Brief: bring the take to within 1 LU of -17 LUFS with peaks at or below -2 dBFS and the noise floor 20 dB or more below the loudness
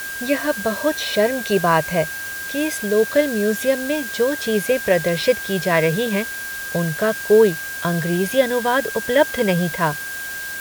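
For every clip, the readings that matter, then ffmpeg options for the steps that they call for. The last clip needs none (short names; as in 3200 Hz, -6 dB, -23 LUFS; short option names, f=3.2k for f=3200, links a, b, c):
steady tone 1600 Hz; tone level -28 dBFS; noise floor -29 dBFS; noise floor target -40 dBFS; loudness -20.0 LUFS; peak -2.0 dBFS; loudness target -17.0 LUFS
-> -af "bandreject=f=1.6k:w=30"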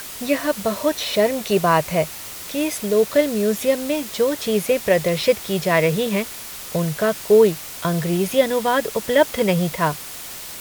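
steady tone none; noise floor -34 dBFS; noise floor target -40 dBFS
-> -af "afftdn=nr=6:nf=-34"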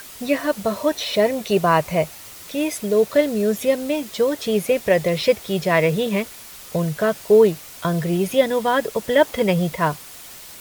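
noise floor -40 dBFS; noise floor target -41 dBFS
-> -af "afftdn=nr=6:nf=-40"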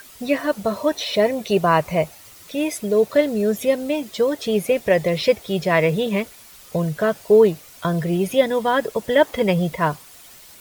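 noise floor -45 dBFS; loudness -20.5 LUFS; peak -3.0 dBFS; loudness target -17.0 LUFS
-> -af "volume=3.5dB,alimiter=limit=-2dB:level=0:latency=1"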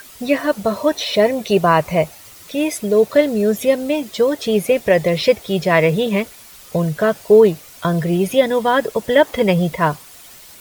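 loudness -17.0 LUFS; peak -2.0 dBFS; noise floor -42 dBFS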